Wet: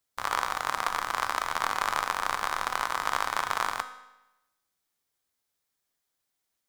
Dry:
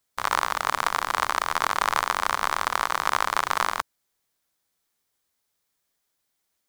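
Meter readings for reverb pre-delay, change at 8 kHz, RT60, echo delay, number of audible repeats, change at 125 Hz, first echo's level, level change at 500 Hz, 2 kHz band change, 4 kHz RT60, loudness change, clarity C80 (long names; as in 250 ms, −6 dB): 4 ms, −4.5 dB, 0.95 s, no echo audible, no echo audible, −4.5 dB, no echo audible, −4.5 dB, −4.0 dB, 0.90 s, −4.5 dB, 13.5 dB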